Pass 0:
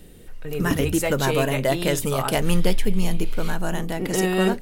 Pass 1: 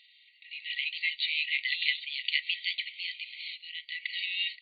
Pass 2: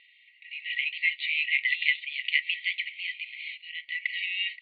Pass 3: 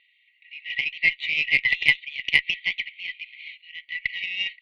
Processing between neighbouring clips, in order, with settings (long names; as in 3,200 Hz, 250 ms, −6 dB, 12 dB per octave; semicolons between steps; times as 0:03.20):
brick-wall band-pass 1,900–4,600 Hz; level +2.5 dB
low-pass filter 2,500 Hz 24 dB per octave; level +7 dB
harmonic generator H 4 −26 dB, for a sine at −8 dBFS; expander for the loud parts 1.5 to 1, over −43 dBFS; level +7 dB